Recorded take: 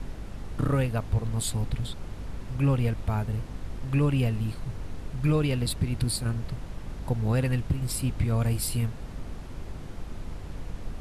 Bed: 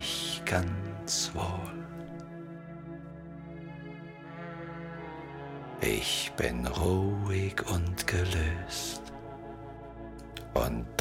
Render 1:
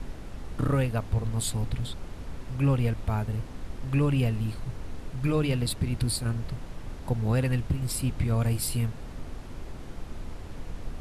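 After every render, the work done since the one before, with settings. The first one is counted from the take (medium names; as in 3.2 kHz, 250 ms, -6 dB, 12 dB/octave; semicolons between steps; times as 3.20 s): de-hum 50 Hz, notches 4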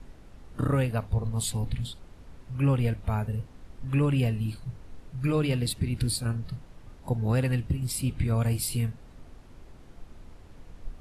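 noise print and reduce 10 dB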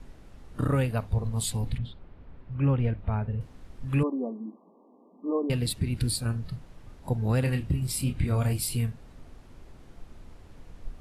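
1.78–3.41 s: distance through air 360 m; 4.03–5.50 s: brick-wall FIR band-pass 200–1200 Hz; 7.40–8.53 s: doubling 29 ms -7 dB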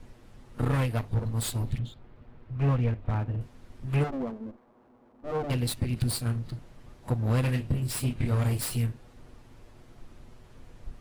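comb filter that takes the minimum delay 8.3 ms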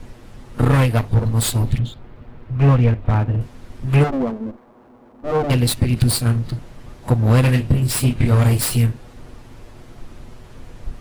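trim +11.5 dB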